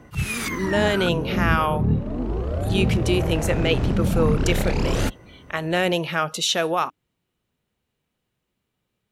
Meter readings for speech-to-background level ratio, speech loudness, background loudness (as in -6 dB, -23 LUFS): 0.5 dB, -24.0 LUFS, -24.5 LUFS